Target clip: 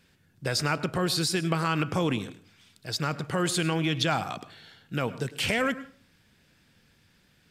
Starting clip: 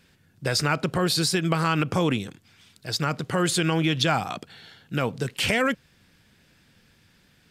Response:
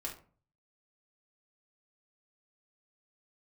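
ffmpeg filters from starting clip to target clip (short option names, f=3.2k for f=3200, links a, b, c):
-filter_complex "[0:a]asplit=2[a][b];[1:a]atrim=start_sample=2205,adelay=103[c];[b][c]afir=irnorm=-1:irlink=0,volume=-15dB[d];[a][d]amix=inputs=2:normalize=0,volume=-3.5dB"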